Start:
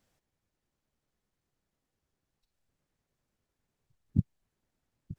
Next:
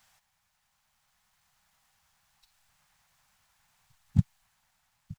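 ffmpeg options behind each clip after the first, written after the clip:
ffmpeg -i in.wav -af "firequalizer=gain_entry='entry(180,0);entry(330,-17);entry(790,13)':delay=0.05:min_phase=1,dynaudnorm=framelen=210:gausssize=11:maxgain=5dB" out.wav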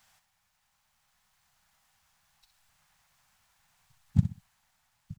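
ffmpeg -i in.wav -af "aecho=1:1:63|126|189:0.299|0.0746|0.0187" out.wav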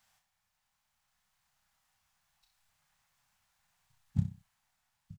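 ffmpeg -i in.wav -filter_complex "[0:a]asplit=2[link_01][link_02];[link_02]adelay=30,volume=-7dB[link_03];[link_01][link_03]amix=inputs=2:normalize=0,volume=-7.5dB" out.wav

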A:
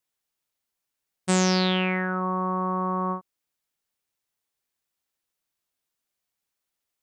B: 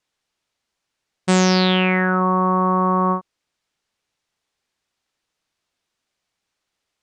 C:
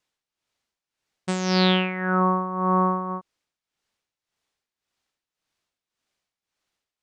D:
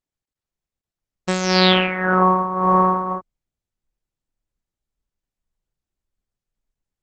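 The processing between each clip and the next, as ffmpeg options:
ffmpeg -i in.wav -filter_complex "[0:a]lowpass=6000,asplit=2[link_01][link_02];[link_02]alimiter=limit=-18.5dB:level=0:latency=1,volume=2.5dB[link_03];[link_01][link_03]amix=inputs=2:normalize=0,volume=2dB" out.wav
ffmpeg -i in.wav -af "tremolo=f=1.8:d=0.72,volume=-1.5dB" out.wav
ffmpeg -i in.wav -af "anlmdn=0.01,asubboost=boost=11:cutoff=62,volume=7dB" -ar 48000 -c:a libopus -b:a 10k out.opus

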